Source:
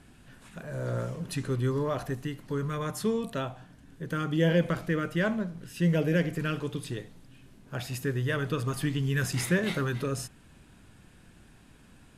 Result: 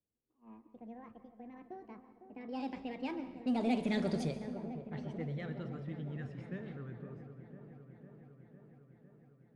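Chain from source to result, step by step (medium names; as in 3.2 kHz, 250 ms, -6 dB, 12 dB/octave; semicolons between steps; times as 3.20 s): gliding tape speed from 182% -> 73%; Doppler pass-by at 4.11 s, 13 m/s, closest 3.7 m; level-controlled noise filter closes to 1 kHz, open at -32 dBFS; elliptic low-pass 10 kHz; gate -56 dBFS, range -17 dB; high-pass 40 Hz; bass shelf 420 Hz +8 dB; in parallel at -9 dB: hard clipper -33 dBFS, distortion -5 dB; on the sum: feedback echo behind a low-pass 504 ms, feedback 72%, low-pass 1.4 kHz, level -10.5 dB; on a send at -13 dB: reverberation RT60 1.2 s, pre-delay 117 ms; on the sum: trim -6 dB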